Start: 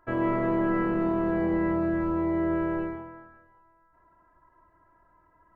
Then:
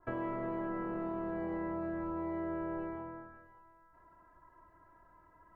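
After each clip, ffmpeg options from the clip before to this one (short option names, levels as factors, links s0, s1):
-filter_complex "[0:a]acrossover=split=580|1200[s0][s1][s2];[s0]acompressor=threshold=0.00891:ratio=4[s3];[s1]acompressor=threshold=0.00708:ratio=4[s4];[s2]acompressor=threshold=0.00282:ratio=4[s5];[s3][s4][s5]amix=inputs=3:normalize=0,adynamicequalizer=threshold=0.00178:dfrequency=1500:dqfactor=0.7:tfrequency=1500:tqfactor=0.7:attack=5:release=100:ratio=0.375:range=3:mode=cutabove:tftype=highshelf"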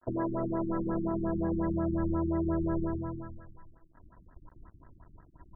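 -af "aeval=exprs='val(0)*gte(abs(val(0)),0.00112)':c=same,asubboost=boost=4.5:cutoff=240,afftfilt=real='re*lt(b*sr/1024,330*pow(2000/330,0.5+0.5*sin(2*PI*5.6*pts/sr)))':imag='im*lt(b*sr/1024,330*pow(2000/330,0.5+0.5*sin(2*PI*5.6*pts/sr)))':win_size=1024:overlap=0.75,volume=2.24"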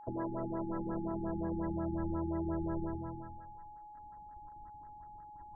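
-af "aeval=exprs='val(0)+0.00708*sin(2*PI*840*n/s)':c=same,volume=0.501"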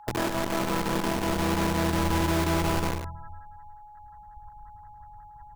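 -filter_complex "[0:a]acrossover=split=150|790[s0][s1][s2];[s1]acrusher=bits=5:mix=0:aa=0.000001[s3];[s0][s3][s2]amix=inputs=3:normalize=0,aecho=1:1:108:0.447,volume=2.66"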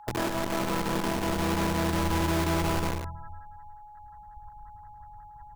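-af "asoftclip=type=tanh:threshold=0.126"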